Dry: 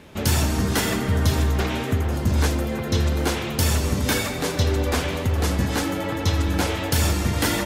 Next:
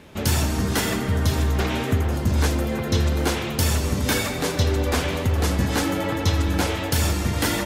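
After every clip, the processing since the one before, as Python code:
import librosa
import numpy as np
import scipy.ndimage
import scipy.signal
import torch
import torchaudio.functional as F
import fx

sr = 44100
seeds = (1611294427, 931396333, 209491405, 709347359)

y = fx.rider(x, sr, range_db=10, speed_s=0.5)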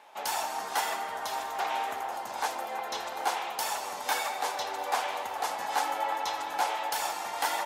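y = fx.highpass_res(x, sr, hz=810.0, q=4.9)
y = y + 10.0 ** (-23.0 / 20.0) * np.pad(y, (int(1199 * sr / 1000.0), 0))[:len(y)]
y = y * 10.0 ** (-8.5 / 20.0)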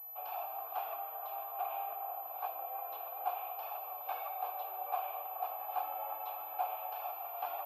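y = fx.vowel_filter(x, sr, vowel='a')
y = fx.air_absorb(y, sr, metres=68.0)
y = fx.pwm(y, sr, carrier_hz=12000.0)
y = y * 10.0 ** (-1.0 / 20.0)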